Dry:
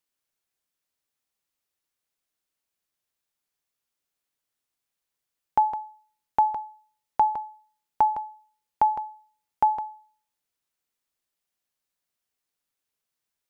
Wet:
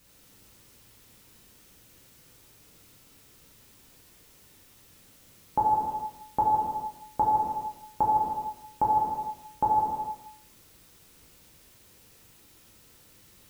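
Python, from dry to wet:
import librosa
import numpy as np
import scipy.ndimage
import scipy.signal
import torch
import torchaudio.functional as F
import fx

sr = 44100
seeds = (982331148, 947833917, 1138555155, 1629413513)

y = scipy.signal.sosfilt(scipy.signal.butter(2, 1000.0, 'lowpass', fs=sr, output='sos'), x)
y = fx.low_shelf(y, sr, hz=120.0, db=-9.0)
y = fx.dmg_noise_colour(y, sr, seeds[0], colour='white', level_db=-60.0)
y = fx.curve_eq(y, sr, hz=(120.0, 450.0, 670.0), db=(0, -6, -14))
y = fx.rev_gated(y, sr, seeds[1], gate_ms=500, shape='falling', drr_db=-6.5)
y = y * librosa.db_to_amplitude(9.0)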